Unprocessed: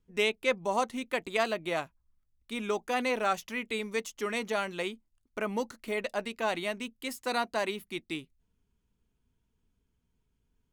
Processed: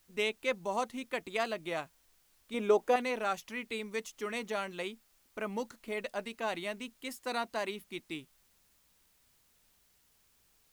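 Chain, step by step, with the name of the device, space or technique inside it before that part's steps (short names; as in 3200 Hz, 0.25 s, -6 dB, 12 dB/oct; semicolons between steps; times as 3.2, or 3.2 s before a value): plain cassette with noise reduction switched in (mismatched tape noise reduction decoder only; wow and flutter 20 cents; white noise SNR 31 dB); 2.54–2.96 bell 500 Hz +11.5 dB 1.8 oct; gain -4.5 dB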